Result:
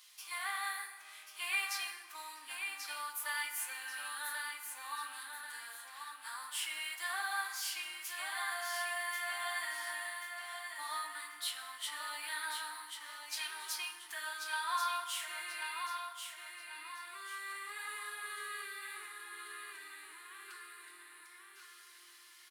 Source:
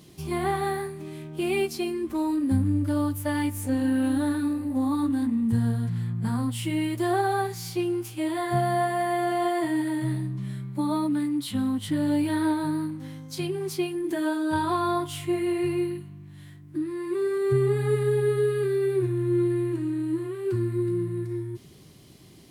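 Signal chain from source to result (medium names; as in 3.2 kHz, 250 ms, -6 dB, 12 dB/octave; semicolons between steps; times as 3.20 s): high-pass 1.2 kHz 24 dB/octave; feedback delay 1087 ms, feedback 36%, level -6 dB; FDN reverb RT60 1.8 s, low-frequency decay 1×, high-frequency decay 0.55×, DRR 7 dB; trim -2 dB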